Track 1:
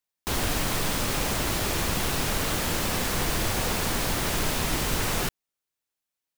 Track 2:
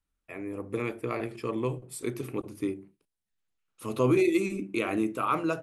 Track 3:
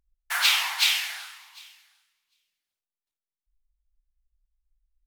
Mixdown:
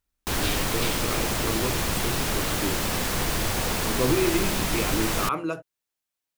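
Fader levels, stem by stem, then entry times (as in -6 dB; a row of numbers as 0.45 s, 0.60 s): +0.5 dB, -0.5 dB, -13.0 dB; 0.00 s, 0.00 s, 0.00 s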